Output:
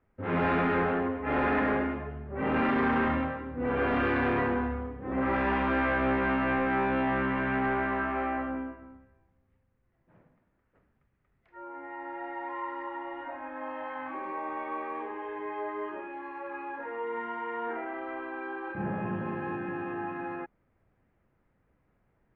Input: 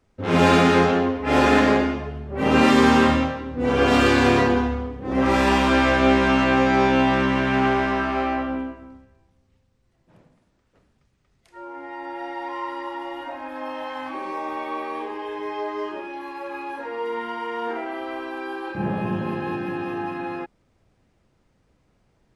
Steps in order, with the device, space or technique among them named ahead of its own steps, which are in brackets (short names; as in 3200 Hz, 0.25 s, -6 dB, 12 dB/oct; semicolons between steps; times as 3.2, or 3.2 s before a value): overdriven synthesiser ladder filter (soft clip -16 dBFS, distortion -12 dB; ladder low-pass 2400 Hz, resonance 30%)